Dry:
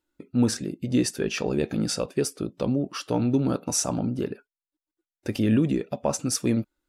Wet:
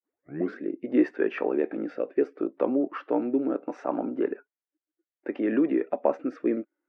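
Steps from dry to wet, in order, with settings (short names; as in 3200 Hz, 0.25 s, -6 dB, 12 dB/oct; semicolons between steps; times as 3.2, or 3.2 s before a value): tape start at the beginning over 0.56 s; rotary speaker horn 0.65 Hz; Chebyshev band-pass 300–2000 Hz, order 3; gain +4.5 dB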